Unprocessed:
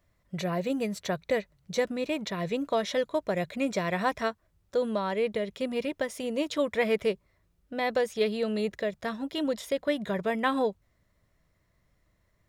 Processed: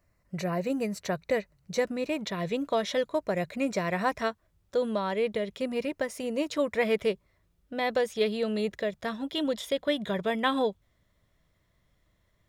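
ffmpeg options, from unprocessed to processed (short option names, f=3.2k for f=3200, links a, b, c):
-af "asetnsamples=n=441:p=0,asendcmd='0.98 equalizer g -8;2.19 equalizer g 1.5;3.09 equalizer g -8;4.2 equalizer g 2;5.6 equalizer g -7.5;6.83 equalizer g 3;9.16 equalizer g 9.5',equalizer=f=3.4k:t=o:w=0.21:g=-14.5"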